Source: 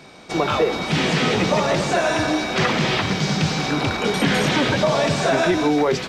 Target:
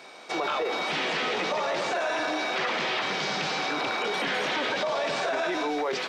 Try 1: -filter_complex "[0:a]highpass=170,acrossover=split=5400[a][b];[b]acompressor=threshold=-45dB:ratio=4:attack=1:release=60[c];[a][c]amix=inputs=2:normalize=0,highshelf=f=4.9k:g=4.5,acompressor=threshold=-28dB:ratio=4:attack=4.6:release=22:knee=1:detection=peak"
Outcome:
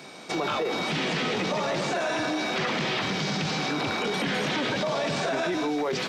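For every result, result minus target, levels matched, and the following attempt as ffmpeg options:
125 Hz band +11.5 dB; 8000 Hz band +2.0 dB
-filter_complex "[0:a]highpass=480,acrossover=split=5400[a][b];[b]acompressor=threshold=-45dB:ratio=4:attack=1:release=60[c];[a][c]amix=inputs=2:normalize=0,highshelf=f=4.9k:g=4.5,acompressor=threshold=-28dB:ratio=4:attack=4.6:release=22:knee=1:detection=peak"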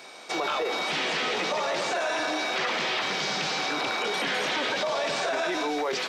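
8000 Hz band +4.0 dB
-filter_complex "[0:a]highpass=480,acrossover=split=5400[a][b];[b]acompressor=threshold=-45dB:ratio=4:attack=1:release=60[c];[a][c]amix=inputs=2:normalize=0,highshelf=f=4.9k:g=-3.5,acompressor=threshold=-28dB:ratio=4:attack=4.6:release=22:knee=1:detection=peak"

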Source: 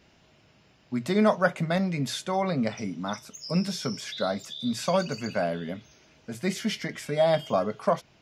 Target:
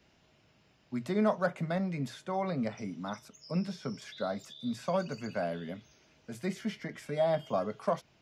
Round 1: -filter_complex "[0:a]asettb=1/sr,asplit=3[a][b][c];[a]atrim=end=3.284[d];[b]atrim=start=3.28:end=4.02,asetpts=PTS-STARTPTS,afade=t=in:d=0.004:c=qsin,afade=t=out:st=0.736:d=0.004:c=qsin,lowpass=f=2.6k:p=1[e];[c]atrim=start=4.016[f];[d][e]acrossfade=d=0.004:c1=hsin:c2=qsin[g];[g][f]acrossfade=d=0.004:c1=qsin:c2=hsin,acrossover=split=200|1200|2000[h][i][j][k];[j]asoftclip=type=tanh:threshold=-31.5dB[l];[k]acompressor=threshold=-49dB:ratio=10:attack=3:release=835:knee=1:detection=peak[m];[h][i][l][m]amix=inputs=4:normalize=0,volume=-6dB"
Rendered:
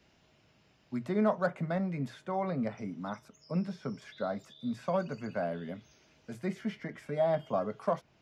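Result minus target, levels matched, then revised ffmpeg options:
compressor: peak gain reduction +8.5 dB
-filter_complex "[0:a]asettb=1/sr,asplit=3[a][b][c];[a]atrim=end=3.284[d];[b]atrim=start=3.28:end=4.02,asetpts=PTS-STARTPTS,afade=t=in:d=0.004:c=qsin,afade=t=out:st=0.736:d=0.004:c=qsin,lowpass=f=2.6k:p=1[e];[c]atrim=start=4.016[f];[d][e]acrossfade=d=0.004:c1=hsin:c2=qsin[g];[g][f]acrossfade=d=0.004:c1=qsin:c2=hsin,acrossover=split=200|1200|2000[h][i][j][k];[j]asoftclip=type=tanh:threshold=-31.5dB[l];[k]acompressor=threshold=-39.5dB:ratio=10:attack=3:release=835:knee=1:detection=peak[m];[h][i][l][m]amix=inputs=4:normalize=0,volume=-6dB"

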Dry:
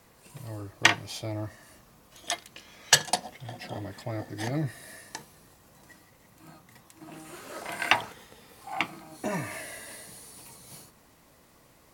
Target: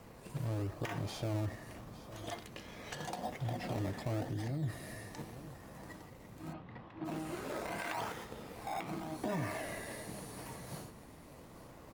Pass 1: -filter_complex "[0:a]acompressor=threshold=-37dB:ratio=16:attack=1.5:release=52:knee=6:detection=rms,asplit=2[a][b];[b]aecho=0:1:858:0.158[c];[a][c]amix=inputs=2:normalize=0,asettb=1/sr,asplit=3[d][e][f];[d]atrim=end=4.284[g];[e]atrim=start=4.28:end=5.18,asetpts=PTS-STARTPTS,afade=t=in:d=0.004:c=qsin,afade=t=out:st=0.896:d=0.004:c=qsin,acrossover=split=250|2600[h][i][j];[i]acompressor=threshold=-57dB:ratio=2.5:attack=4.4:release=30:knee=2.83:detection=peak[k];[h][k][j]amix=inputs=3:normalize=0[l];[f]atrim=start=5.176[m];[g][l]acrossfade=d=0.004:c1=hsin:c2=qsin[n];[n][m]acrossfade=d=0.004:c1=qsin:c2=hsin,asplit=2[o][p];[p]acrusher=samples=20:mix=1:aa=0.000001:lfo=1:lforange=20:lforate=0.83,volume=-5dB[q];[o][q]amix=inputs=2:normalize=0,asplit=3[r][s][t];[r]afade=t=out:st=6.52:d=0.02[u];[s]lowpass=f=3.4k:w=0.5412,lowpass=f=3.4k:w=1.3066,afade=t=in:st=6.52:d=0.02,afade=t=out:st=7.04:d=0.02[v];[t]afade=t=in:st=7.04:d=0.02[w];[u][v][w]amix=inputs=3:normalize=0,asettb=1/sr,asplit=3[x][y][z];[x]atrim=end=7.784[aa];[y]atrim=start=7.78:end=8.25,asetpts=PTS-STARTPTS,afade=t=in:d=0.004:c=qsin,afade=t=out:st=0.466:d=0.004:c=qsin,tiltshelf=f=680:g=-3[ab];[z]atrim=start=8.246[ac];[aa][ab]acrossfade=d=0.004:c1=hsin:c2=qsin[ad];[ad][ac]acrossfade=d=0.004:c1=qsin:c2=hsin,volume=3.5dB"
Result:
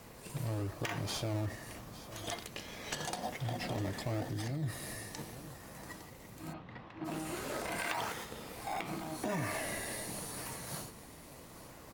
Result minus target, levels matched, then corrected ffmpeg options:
4000 Hz band +4.5 dB
-filter_complex "[0:a]acompressor=threshold=-37dB:ratio=16:attack=1.5:release=52:knee=6:detection=rms,highshelf=f=2.2k:g=-9.5,asplit=2[a][b];[b]aecho=0:1:858:0.158[c];[a][c]amix=inputs=2:normalize=0,asettb=1/sr,asplit=3[d][e][f];[d]atrim=end=4.284[g];[e]atrim=start=4.28:end=5.18,asetpts=PTS-STARTPTS,afade=t=in:d=0.004:c=qsin,afade=t=out:st=0.896:d=0.004:c=qsin,acrossover=split=250|2600[h][i][j];[i]acompressor=threshold=-57dB:ratio=2.5:attack=4.4:release=30:knee=2.83:detection=peak[k];[h][k][j]amix=inputs=3:normalize=0[l];[f]atrim=start=5.176[m];[g][l]acrossfade=d=0.004:c1=hsin:c2=qsin[n];[n][m]acrossfade=d=0.004:c1=qsin:c2=hsin,asplit=2[o][p];[p]acrusher=samples=20:mix=1:aa=0.000001:lfo=1:lforange=20:lforate=0.83,volume=-5dB[q];[o][q]amix=inputs=2:normalize=0,asplit=3[r][s][t];[r]afade=t=out:st=6.52:d=0.02[u];[s]lowpass=f=3.4k:w=0.5412,lowpass=f=3.4k:w=1.3066,afade=t=in:st=6.52:d=0.02,afade=t=out:st=7.04:d=0.02[v];[t]afade=t=in:st=7.04:d=0.02[w];[u][v][w]amix=inputs=3:normalize=0,asettb=1/sr,asplit=3[x][y][z];[x]atrim=end=7.784[aa];[y]atrim=start=7.78:end=8.25,asetpts=PTS-STARTPTS,afade=t=in:d=0.004:c=qsin,afade=t=out:st=0.466:d=0.004:c=qsin,tiltshelf=f=680:g=-3[ab];[z]atrim=start=8.246[ac];[aa][ab]acrossfade=d=0.004:c1=hsin:c2=qsin[ad];[ad][ac]acrossfade=d=0.004:c1=qsin:c2=hsin,volume=3.5dB"

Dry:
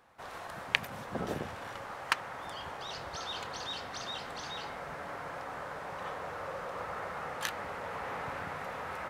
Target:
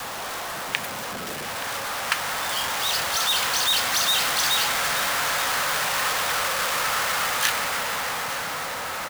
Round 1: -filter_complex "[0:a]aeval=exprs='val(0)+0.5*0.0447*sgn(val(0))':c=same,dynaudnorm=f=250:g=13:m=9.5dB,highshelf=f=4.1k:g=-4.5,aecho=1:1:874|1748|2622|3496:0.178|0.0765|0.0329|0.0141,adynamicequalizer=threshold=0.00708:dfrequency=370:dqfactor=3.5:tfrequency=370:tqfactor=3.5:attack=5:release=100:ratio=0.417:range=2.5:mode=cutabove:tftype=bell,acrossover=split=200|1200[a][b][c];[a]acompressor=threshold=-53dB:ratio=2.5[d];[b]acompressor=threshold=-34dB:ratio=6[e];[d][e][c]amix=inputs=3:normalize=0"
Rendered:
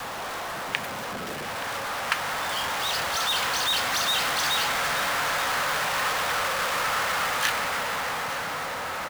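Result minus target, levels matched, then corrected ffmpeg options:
8000 Hz band -3.0 dB
-filter_complex "[0:a]aeval=exprs='val(0)+0.5*0.0447*sgn(val(0))':c=same,dynaudnorm=f=250:g=13:m=9.5dB,highshelf=f=4.1k:g=3,aecho=1:1:874|1748|2622|3496:0.178|0.0765|0.0329|0.0141,adynamicequalizer=threshold=0.00708:dfrequency=370:dqfactor=3.5:tfrequency=370:tqfactor=3.5:attack=5:release=100:ratio=0.417:range=2.5:mode=cutabove:tftype=bell,acrossover=split=200|1200[a][b][c];[a]acompressor=threshold=-53dB:ratio=2.5[d];[b]acompressor=threshold=-34dB:ratio=6[e];[d][e][c]amix=inputs=3:normalize=0"

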